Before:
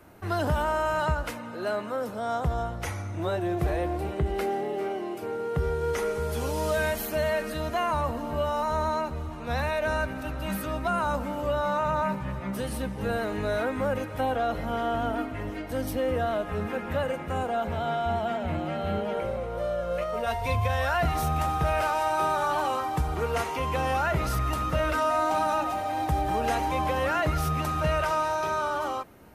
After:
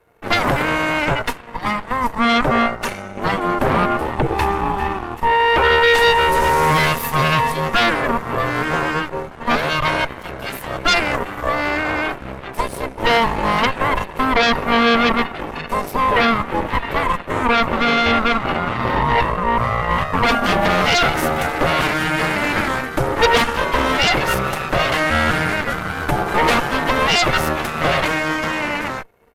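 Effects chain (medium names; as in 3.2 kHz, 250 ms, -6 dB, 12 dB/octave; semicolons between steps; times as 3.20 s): comb 1.9 ms, depth 42%; small resonant body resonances 460/720/1400/2200 Hz, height 15 dB, ringing for 60 ms; Chebyshev shaper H 3 -12 dB, 8 -7 dB, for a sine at -5 dBFS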